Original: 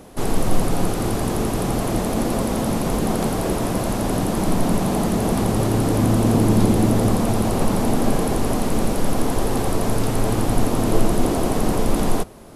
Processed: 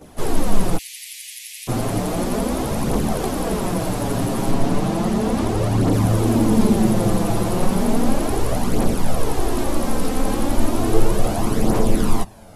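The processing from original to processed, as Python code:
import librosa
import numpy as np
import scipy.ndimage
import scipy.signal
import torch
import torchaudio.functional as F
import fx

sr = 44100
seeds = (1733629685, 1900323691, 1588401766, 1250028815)

y = fx.chorus_voices(x, sr, voices=2, hz=0.17, base_ms=13, depth_ms=4.2, mix_pct=70)
y = fx.steep_highpass(y, sr, hz=2000.0, slope=72, at=(0.77, 1.67), fade=0.02)
y = fx.high_shelf(y, sr, hz=11000.0, db=-11.5, at=(4.51, 5.93))
y = y * 10.0 ** (2.0 / 20.0)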